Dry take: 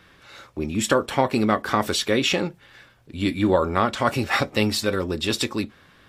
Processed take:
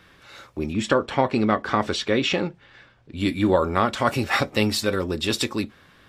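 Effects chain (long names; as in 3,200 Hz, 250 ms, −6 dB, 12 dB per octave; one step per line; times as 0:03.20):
0:00.73–0:03.17: high-frequency loss of the air 99 metres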